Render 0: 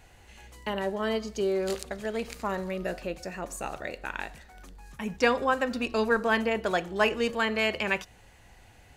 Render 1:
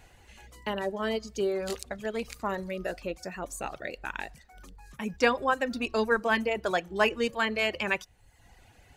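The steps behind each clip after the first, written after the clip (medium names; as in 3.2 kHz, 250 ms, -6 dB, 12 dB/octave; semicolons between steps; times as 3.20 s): reverb removal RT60 0.81 s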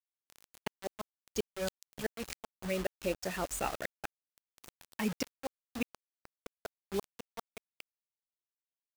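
inverted gate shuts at -21 dBFS, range -30 dB; bit crusher 7-bit; trim +1 dB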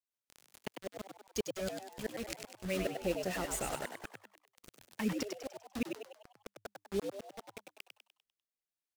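rotary cabinet horn 5 Hz, later 0.8 Hz, at 6.04 s; frequency-shifting echo 99 ms, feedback 46%, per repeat +99 Hz, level -6 dB; trim +1 dB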